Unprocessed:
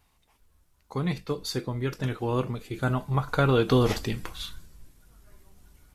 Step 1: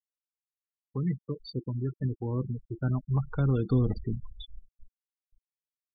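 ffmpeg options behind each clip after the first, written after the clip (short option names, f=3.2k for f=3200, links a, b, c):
-filter_complex "[0:a]afftfilt=real='re*gte(hypot(re,im),0.0794)':imag='im*gte(hypot(re,im),0.0794)':win_size=1024:overlap=0.75,acrossover=split=290[a][b];[b]acompressor=threshold=-45dB:ratio=2.5[c];[a][c]amix=inputs=2:normalize=0"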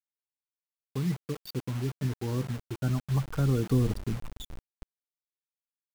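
-af "acrusher=bits=6:mix=0:aa=0.000001"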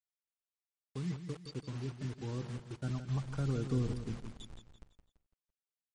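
-af "aecho=1:1:168|336|504|672:0.335|0.134|0.0536|0.0214,volume=-8dB" -ar 44100 -c:a libmp3lame -b:a 40k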